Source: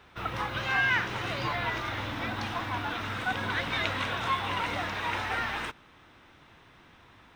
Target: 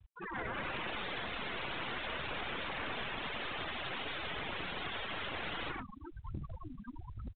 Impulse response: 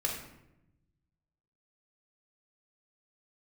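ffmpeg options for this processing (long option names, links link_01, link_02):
-filter_complex "[0:a]asplit=3[link_01][link_02][link_03];[link_01]afade=type=out:start_time=3.08:duration=0.02[link_04];[link_02]aemphasis=mode=production:type=50kf,afade=type=in:start_time=3.08:duration=0.02,afade=type=out:start_time=5.39:duration=0.02[link_05];[link_03]afade=type=in:start_time=5.39:duration=0.02[link_06];[link_04][link_05][link_06]amix=inputs=3:normalize=0,aphaser=in_gain=1:out_gain=1:delay=4.8:decay=0.72:speed=1.1:type=triangular,lowpass=frequency=2400:width=0.5412,lowpass=frequency=2400:width=1.3066,lowshelf=frequency=250:gain=5.5,afftfilt=real='re*lt(hypot(re,im),0.0891)':imag='im*lt(hypot(re,im),0.0891)':win_size=1024:overlap=0.75,asplit=5[link_07][link_08][link_09][link_10][link_11];[link_08]adelay=96,afreqshift=-140,volume=-8dB[link_12];[link_09]adelay=192,afreqshift=-280,volume=-16.2dB[link_13];[link_10]adelay=288,afreqshift=-420,volume=-24.4dB[link_14];[link_11]adelay=384,afreqshift=-560,volume=-32.5dB[link_15];[link_07][link_12][link_13][link_14][link_15]amix=inputs=5:normalize=0,dynaudnorm=framelen=150:gausssize=9:maxgain=11dB,aeval=exprs='(mod(12.6*val(0)+1,2)-1)/12.6':channel_layout=same,afftfilt=real='re*gte(hypot(re,im),0.0501)':imag='im*gte(hypot(re,im),0.0501)':win_size=1024:overlap=0.75,aeval=exprs='clip(val(0),-1,0.0126)':channel_layout=same,acompressor=threshold=-35dB:ratio=6" -ar 8000 -c:a pcm_mulaw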